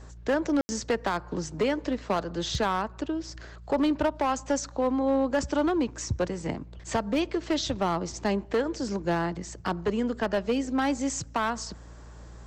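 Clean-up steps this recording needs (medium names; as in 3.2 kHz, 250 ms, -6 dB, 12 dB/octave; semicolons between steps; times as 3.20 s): clip repair -19.5 dBFS; de-hum 58.1 Hz, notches 3; room tone fill 0.61–0.69 s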